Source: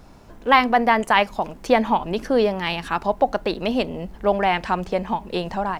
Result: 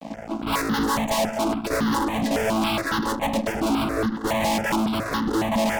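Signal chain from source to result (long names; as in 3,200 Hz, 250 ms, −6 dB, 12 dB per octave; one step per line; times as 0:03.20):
channel vocoder with a chord as carrier major triad, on A3
fuzz pedal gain 43 dB, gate −51 dBFS
step-sequenced phaser 7.2 Hz 380–2,400 Hz
level −5.5 dB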